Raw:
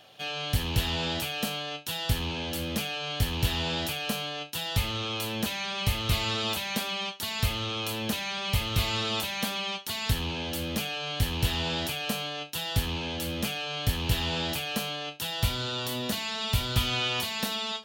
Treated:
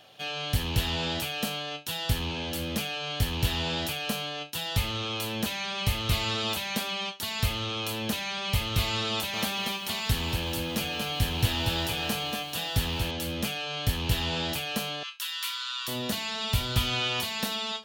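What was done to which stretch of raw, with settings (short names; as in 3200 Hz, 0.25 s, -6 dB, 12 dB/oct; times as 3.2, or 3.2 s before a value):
9.1–13.11 lo-fi delay 0.235 s, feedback 35%, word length 8-bit, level -4.5 dB
15.03–15.88 steep high-pass 980 Hz 96 dB/oct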